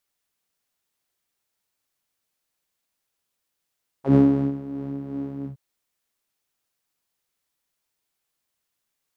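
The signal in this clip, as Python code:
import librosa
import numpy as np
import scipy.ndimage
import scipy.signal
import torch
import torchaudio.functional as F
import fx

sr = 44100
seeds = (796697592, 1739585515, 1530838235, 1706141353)

y = fx.sub_patch_tremolo(sr, seeds[0], note=49, wave='saw', wave2='saw', interval_st=0, detune_cents=27, level2_db=-9.0, sub_db=-15.0, noise_db=-30.0, kind='bandpass', cutoff_hz=120.0, q=2.9, env_oct=3.0, env_decay_s=0.05, env_sustain_pct=40, attack_ms=112.0, decay_s=0.36, sustain_db=-18.5, release_s=0.11, note_s=1.41, lfo_hz=2.8, tremolo_db=4)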